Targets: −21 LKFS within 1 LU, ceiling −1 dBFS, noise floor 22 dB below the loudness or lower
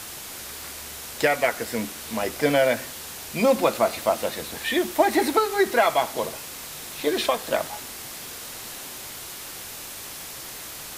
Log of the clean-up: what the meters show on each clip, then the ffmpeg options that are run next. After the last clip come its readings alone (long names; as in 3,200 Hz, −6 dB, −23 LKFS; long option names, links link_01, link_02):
background noise floor −38 dBFS; target noise floor −48 dBFS; integrated loudness −25.5 LKFS; sample peak −5.5 dBFS; target loudness −21.0 LKFS
→ -af "afftdn=noise_reduction=10:noise_floor=-38"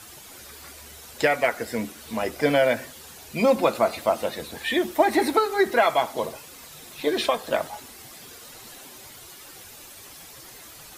background noise floor −45 dBFS; target noise floor −46 dBFS
→ -af "afftdn=noise_reduction=6:noise_floor=-45"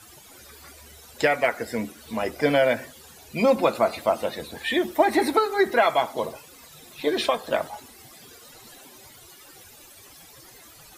background noise floor −49 dBFS; integrated loudness −24.0 LKFS; sample peak −5.5 dBFS; target loudness −21.0 LKFS
→ -af "volume=3dB"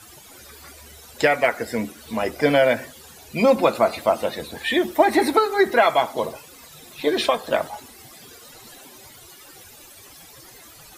integrated loudness −21.0 LKFS; sample peak −2.5 dBFS; background noise floor −46 dBFS